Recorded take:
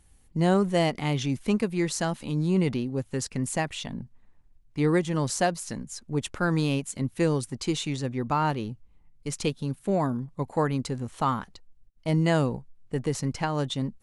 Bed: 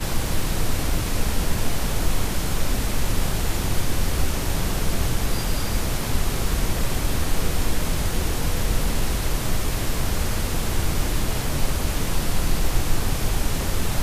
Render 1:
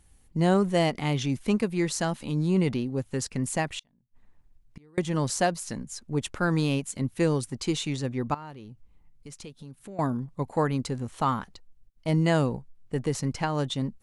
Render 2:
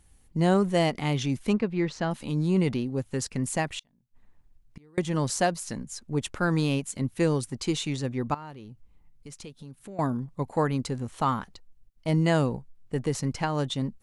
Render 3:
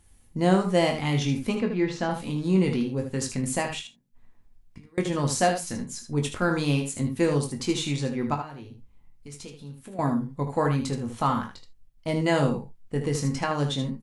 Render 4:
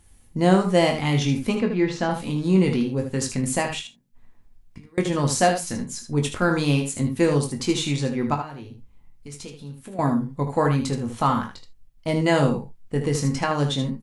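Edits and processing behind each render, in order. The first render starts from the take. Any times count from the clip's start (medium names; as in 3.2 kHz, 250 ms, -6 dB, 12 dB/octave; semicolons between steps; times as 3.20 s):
3.79–4.98 s: inverted gate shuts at -30 dBFS, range -33 dB; 8.34–9.99 s: compression 3:1, threshold -44 dBFS
1.53–2.11 s: distance through air 200 m
early reflections 21 ms -7 dB, 77 ms -8 dB; gated-style reverb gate 100 ms falling, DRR 6 dB
trim +3.5 dB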